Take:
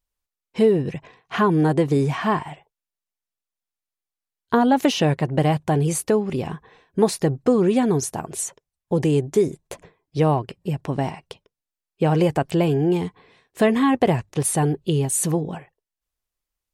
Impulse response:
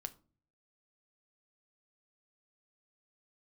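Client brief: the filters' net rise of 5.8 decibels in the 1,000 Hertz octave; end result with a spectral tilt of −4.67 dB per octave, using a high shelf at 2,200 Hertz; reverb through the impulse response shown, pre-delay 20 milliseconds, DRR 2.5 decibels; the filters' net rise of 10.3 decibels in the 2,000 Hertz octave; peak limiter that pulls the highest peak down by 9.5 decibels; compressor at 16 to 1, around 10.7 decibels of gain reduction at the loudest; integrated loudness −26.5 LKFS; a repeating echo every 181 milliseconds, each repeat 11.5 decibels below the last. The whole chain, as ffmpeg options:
-filter_complex "[0:a]equalizer=frequency=1000:width_type=o:gain=4.5,equalizer=frequency=2000:width_type=o:gain=7.5,highshelf=frequency=2200:gain=7.5,acompressor=threshold=-20dB:ratio=16,alimiter=limit=-17dB:level=0:latency=1,aecho=1:1:181|362|543:0.266|0.0718|0.0194,asplit=2[link_01][link_02];[1:a]atrim=start_sample=2205,adelay=20[link_03];[link_02][link_03]afir=irnorm=-1:irlink=0,volume=1dB[link_04];[link_01][link_04]amix=inputs=2:normalize=0,volume=-1.5dB"

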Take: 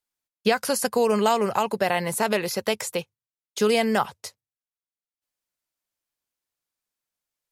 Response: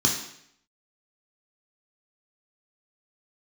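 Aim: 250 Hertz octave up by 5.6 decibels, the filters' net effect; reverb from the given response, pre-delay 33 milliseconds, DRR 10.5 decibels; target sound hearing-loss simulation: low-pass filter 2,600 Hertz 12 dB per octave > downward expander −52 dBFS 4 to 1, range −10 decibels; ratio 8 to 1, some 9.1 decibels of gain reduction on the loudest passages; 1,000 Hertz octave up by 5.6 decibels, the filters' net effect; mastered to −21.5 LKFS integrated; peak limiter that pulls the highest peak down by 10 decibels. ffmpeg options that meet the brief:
-filter_complex "[0:a]equalizer=frequency=250:width_type=o:gain=6.5,equalizer=frequency=1000:width_type=o:gain=7,acompressor=threshold=-21dB:ratio=8,alimiter=limit=-19.5dB:level=0:latency=1,asplit=2[link_01][link_02];[1:a]atrim=start_sample=2205,adelay=33[link_03];[link_02][link_03]afir=irnorm=-1:irlink=0,volume=-22.5dB[link_04];[link_01][link_04]amix=inputs=2:normalize=0,lowpass=2600,agate=range=-10dB:threshold=-52dB:ratio=4,volume=9dB"

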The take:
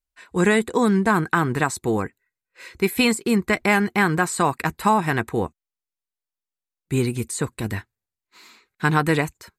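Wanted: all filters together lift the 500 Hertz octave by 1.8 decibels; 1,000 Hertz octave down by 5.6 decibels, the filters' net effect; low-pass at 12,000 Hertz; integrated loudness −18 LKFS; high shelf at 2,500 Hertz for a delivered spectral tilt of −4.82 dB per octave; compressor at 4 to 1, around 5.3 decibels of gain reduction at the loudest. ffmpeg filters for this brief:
ffmpeg -i in.wav -af "lowpass=12000,equalizer=frequency=500:width_type=o:gain=4,equalizer=frequency=1000:width_type=o:gain=-7,highshelf=frequency=2500:gain=-8,acompressor=threshold=-20dB:ratio=4,volume=8.5dB" out.wav

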